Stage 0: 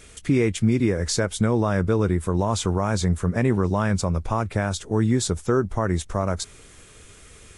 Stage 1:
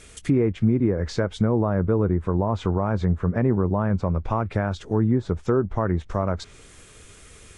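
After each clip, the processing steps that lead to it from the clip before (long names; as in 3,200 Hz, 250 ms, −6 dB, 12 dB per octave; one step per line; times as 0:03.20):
treble cut that deepens with the level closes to 1,100 Hz, closed at −17 dBFS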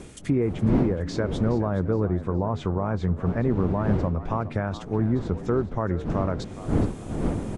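wind on the microphone 270 Hz −28 dBFS
echo with shifted repeats 418 ms, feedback 33%, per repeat +61 Hz, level −14.5 dB
level −3 dB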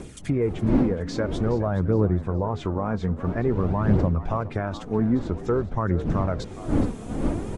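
phase shifter 0.5 Hz, delay 4.6 ms, feedback 37%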